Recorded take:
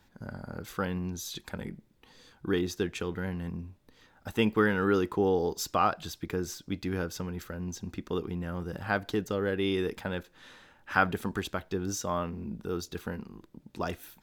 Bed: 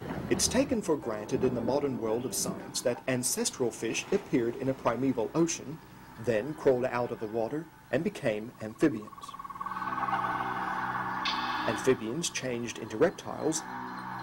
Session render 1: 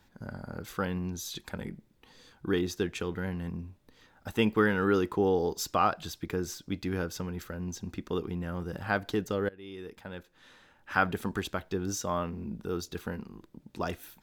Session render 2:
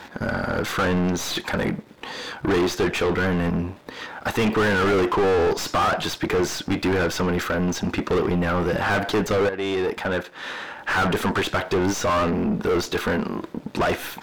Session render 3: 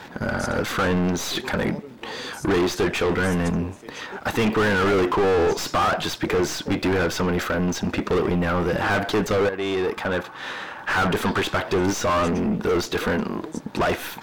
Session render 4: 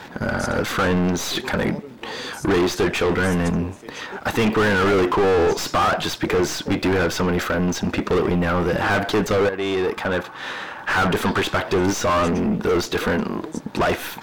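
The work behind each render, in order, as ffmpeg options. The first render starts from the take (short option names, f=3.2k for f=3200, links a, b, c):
-filter_complex "[0:a]asplit=2[a][b];[a]atrim=end=9.49,asetpts=PTS-STARTPTS,afade=t=out:st=9.486:d=0.004:c=hsin:silence=0.0668344[c];[b]atrim=start=9.49,asetpts=PTS-STARTPTS,afade=t=in:d=1.78:silence=0.0668344[d];[c][d]concat=n=2:v=0:a=1"
-filter_complex "[0:a]aeval=exprs='if(lt(val(0),0),0.447*val(0),val(0))':c=same,asplit=2[a][b];[b]highpass=f=720:p=1,volume=39dB,asoftclip=type=tanh:threshold=-12dB[c];[a][c]amix=inputs=2:normalize=0,lowpass=f=1.7k:p=1,volume=-6dB"
-filter_complex "[1:a]volume=-10.5dB[a];[0:a][a]amix=inputs=2:normalize=0"
-af "volume=2dB"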